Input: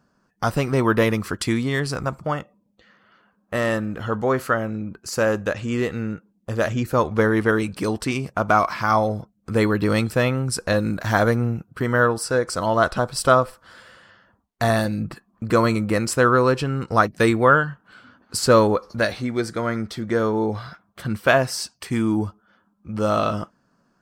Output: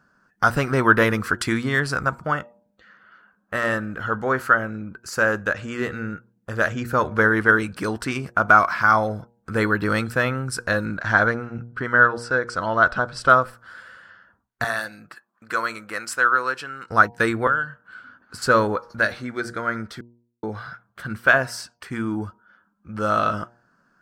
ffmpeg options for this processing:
ffmpeg -i in.wav -filter_complex "[0:a]asplit=3[link_01][link_02][link_03];[link_01]afade=type=out:start_time=10.85:duration=0.02[link_04];[link_02]lowpass=5600,afade=type=in:start_time=10.85:duration=0.02,afade=type=out:start_time=13.28:duration=0.02[link_05];[link_03]afade=type=in:start_time=13.28:duration=0.02[link_06];[link_04][link_05][link_06]amix=inputs=3:normalize=0,asettb=1/sr,asplit=3[link_07][link_08][link_09];[link_07]atrim=end=14.644[link_10];[link_08]atrim=start=14.64:end=16.9,asetpts=PTS-STARTPTS,afade=type=in:duration=0.004:curve=qsin,afade=type=out:start_time=2.256:duration=0.004:curve=qsin,highpass=frequency=1200:poles=1[link_11];[link_09]atrim=start=16.896[link_12];[link_10][link_11]acrossfade=duration=0.004:curve1=hsin:curve2=qsin[link_13];[link_13][link_12]acrossfade=duration=0.004:curve1=qsin:curve2=hsin,asettb=1/sr,asplit=3[link_14][link_15][link_16];[link_14]atrim=end=17.474[link_17];[link_15]atrim=start=17.47:end=18.42,asetpts=PTS-STARTPTS,afade=type=in:duration=0.004:curve=qsin,afade=type=out:start_time=0.946:duration=0.004:curve=qsin,acrossover=split=490|3000[link_18][link_19][link_20];[link_18]acompressor=threshold=-32dB:ratio=4[link_21];[link_19]acompressor=threshold=-25dB:ratio=4[link_22];[link_20]acompressor=threshold=-39dB:ratio=4[link_23];[link_21][link_22][link_23]amix=inputs=3:normalize=0[link_24];[link_16]atrim=start=18.416[link_25];[link_17][link_24]acrossfade=duration=0.004:curve1=hsin:curve2=qsin[link_26];[link_26][link_25]acrossfade=duration=0.004:curve1=qsin:curve2=hsin,asettb=1/sr,asplit=3[link_27][link_28][link_29];[link_27]atrim=end=21.614[link_30];[link_28]atrim=start=21.61:end=22.22,asetpts=PTS-STARTPTS,afade=type=in:duration=0.004:curve=qsin,afade=type=out:start_time=0.606:duration=0.004:curve=qsin,highshelf=frequency=4100:gain=-5[link_31];[link_29]atrim=start=22.216[link_32];[link_30][link_31]acrossfade=duration=0.004:curve1=hsin:curve2=qsin[link_33];[link_33][link_32]acrossfade=duration=0.004:curve1=qsin:curve2=hsin,asplit=3[link_34][link_35][link_36];[link_34]atrim=end=20.01,asetpts=PTS-STARTPTS,afade=type=out:start_time=20.006:duration=0.004:curve=hsin[link_37];[link_35]atrim=start=20.01:end=20.43,asetpts=PTS-STARTPTS,volume=0[link_38];[link_36]atrim=start=20.43,asetpts=PTS-STARTPTS,afade=type=in:duration=0.004:curve=hsin[link_39];[link_37][link_38][link_39]concat=n=3:v=0:a=1,equalizer=frequency=1500:width=2.4:gain=12.5,bandreject=frequency=118.6:width_type=h:width=4,bandreject=frequency=237.2:width_type=h:width=4,bandreject=frequency=355.8:width_type=h:width=4,bandreject=frequency=474.4:width_type=h:width=4,bandreject=frequency=593:width_type=h:width=4,bandreject=frequency=711.6:width_type=h:width=4,bandreject=frequency=830.2:width_type=h:width=4,bandreject=frequency=948.8:width_type=h:width=4,dynaudnorm=framelen=200:gausssize=21:maxgain=11.5dB,volume=-1dB" out.wav

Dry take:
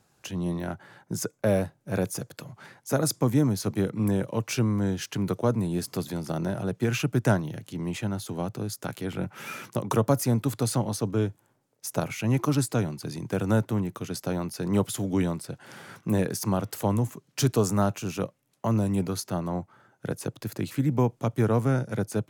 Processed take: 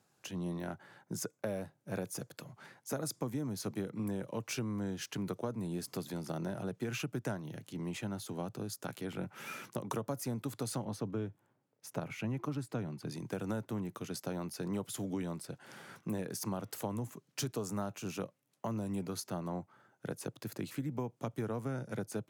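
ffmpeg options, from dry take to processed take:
ffmpeg -i in.wav -filter_complex "[0:a]asettb=1/sr,asplit=3[link_01][link_02][link_03];[link_01]atrim=end=8.454[link_04];[link_02]atrim=start=8.45:end=8.87,asetpts=PTS-STARTPTS,afade=type=in:duration=0.004:curve=qsin,afade=type=out:start_time=0.416:duration=0.004:curve=qsin,bandreject=frequency=2100:width=11[link_05];[link_03]atrim=start=8.866[link_06];[link_04][link_05]acrossfade=duration=0.004:curve1=hsin:curve2=qsin[link_07];[link_07][link_06]acrossfade=duration=0.004:curve1=qsin:curve2=hsin,asettb=1/sr,asplit=3[link_08][link_09][link_10];[link_08]atrim=end=10.854[link_11];[link_09]atrim=start=10.85:end=13.1,asetpts=PTS-STARTPTS,afade=type=in:duration=0.004:curve=qsin,afade=type=out:start_time=2.246:duration=0.004:curve=qsin,bass=frequency=250:gain=3,treble=frequency=4000:gain=-9[link_12];[link_10]atrim=start=13.096[link_13];[link_11][link_12]acrossfade=duration=0.004:curve1=hsin:curve2=qsin[link_14];[link_14][link_13]acrossfade=duration=0.004:curve1=qsin:curve2=hsin,highpass=120,acompressor=threshold=-27dB:ratio=6,volume=-6.5dB" out.wav

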